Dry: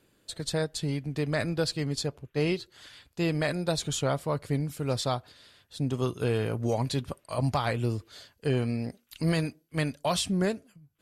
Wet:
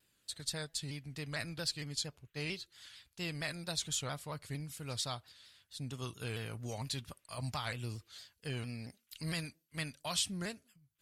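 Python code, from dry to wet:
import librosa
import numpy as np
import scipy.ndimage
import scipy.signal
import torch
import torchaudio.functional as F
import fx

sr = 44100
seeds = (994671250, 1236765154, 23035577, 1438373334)

y = fx.tone_stack(x, sr, knobs='5-5-5')
y = fx.vibrato_shape(y, sr, shape='saw_down', rate_hz=4.4, depth_cents=100.0)
y = y * librosa.db_to_amplitude(3.5)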